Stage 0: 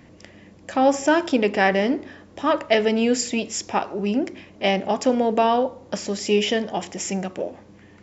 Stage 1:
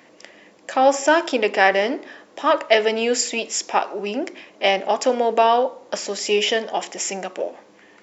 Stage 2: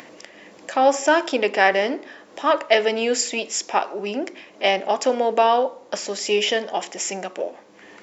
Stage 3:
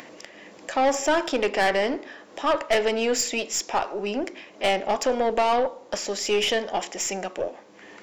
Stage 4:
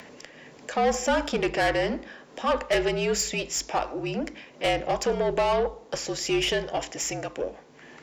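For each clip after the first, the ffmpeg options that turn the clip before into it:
ffmpeg -i in.wav -af "highpass=440,volume=4dB" out.wav
ffmpeg -i in.wav -af "acompressor=mode=upward:threshold=-35dB:ratio=2.5,volume=-1dB" out.wav
ffmpeg -i in.wav -af "aeval=exprs='(tanh(6.31*val(0)+0.25)-tanh(0.25))/6.31':channel_layout=same" out.wav
ffmpeg -i in.wav -af "afreqshift=-53,volume=-2dB" out.wav

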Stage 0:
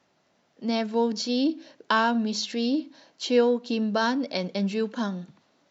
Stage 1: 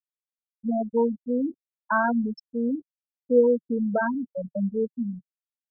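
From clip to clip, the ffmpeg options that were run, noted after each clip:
ffmpeg -i in.wav -af "afftfilt=real='re*gte(hypot(re,im),0.251)':imag='im*gte(hypot(re,im),0.251)':win_size=1024:overlap=0.75,equalizer=frequency=160:width_type=o:width=0.33:gain=-11,equalizer=frequency=315:width_type=o:width=0.33:gain=-12,equalizer=frequency=1000:width_type=o:width=0.33:gain=-7,equalizer=frequency=2000:width_type=o:width=0.33:gain=-10,volume=4dB" out.wav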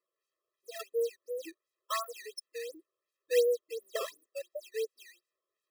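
ffmpeg -i in.wav -af "aexciter=amount=3.2:drive=8.2:freq=3800,acrusher=samples=12:mix=1:aa=0.000001:lfo=1:lforange=19.2:lforate=2.8,afftfilt=real='re*eq(mod(floor(b*sr/1024/340),2),1)':imag='im*eq(mod(floor(b*sr/1024/340),2),1)':win_size=1024:overlap=0.75,volume=-7dB" out.wav

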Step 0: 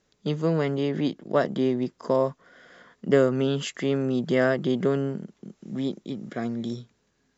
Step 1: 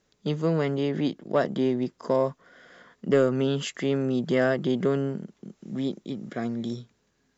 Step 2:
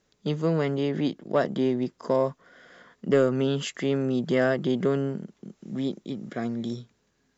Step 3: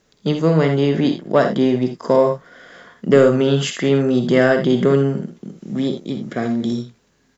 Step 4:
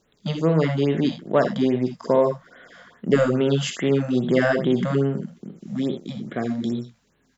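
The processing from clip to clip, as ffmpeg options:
ffmpeg -i in.wav -af "acontrast=71,volume=-7dB" out.wav
ffmpeg -i in.wav -af anull out.wav
ffmpeg -i in.wav -af "aecho=1:1:50|63|80:0.299|0.299|0.251,volume=8.5dB" out.wav
ffmpeg -i in.wav -af "afftfilt=real='re*(1-between(b*sr/1024,310*pow(6200/310,0.5+0.5*sin(2*PI*2.4*pts/sr))/1.41,310*pow(6200/310,0.5+0.5*sin(2*PI*2.4*pts/sr))*1.41))':imag='im*(1-between(b*sr/1024,310*pow(6200/310,0.5+0.5*sin(2*PI*2.4*pts/sr))/1.41,310*pow(6200/310,0.5+0.5*sin(2*PI*2.4*pts/sr))*1.41))':win_size=1024:overlap=0.75,volume=-4dB" out.wav

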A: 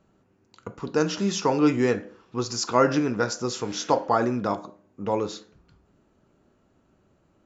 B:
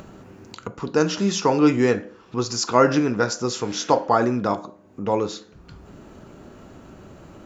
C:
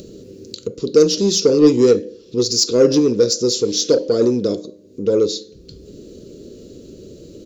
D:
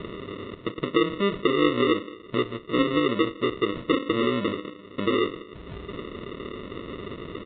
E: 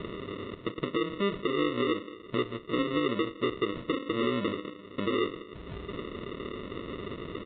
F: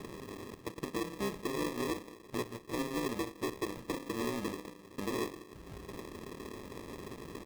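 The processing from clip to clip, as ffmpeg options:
ffmpeg -i in.wav -af "acompressor=mode=upward:threshold=-32dB:ratio=2.5,volume=3.5dB" out.wav
ffmpeg -i in.wav -filter_complex "[0:a]firequalizer=gain_entry='entry(160,0);entry(470,11);entry(790,-25);entry(4100,11);entry(8000,5)':delay=0.05:min_phase=1,asplit=2[link_01][link_02];[link_02]asoftclip=type=tanh:threshold=-13dB,volume=-3dB[link_03];[link_01][link_03]amix=inputs=2:normalize=0,volume=-3dB" out.wav
ffmpeg -i in.wav -af "acompressor=threshold=-32dB:ratio=2,aresample=8000,acrusher=samples=10:mix=1:aa=0.000001,aresample=44100,volume=2.5dB" out.wav
ffmpeg -i in.wav -af "alimiter=limit=-18dB:level=0:latency=1:release=307,volume=-2dB" out.wav
ffmpeg -i in.wav -af "acrusher=samples=30:mix=1:aa=0.000001,volume=-7dB" out.wav

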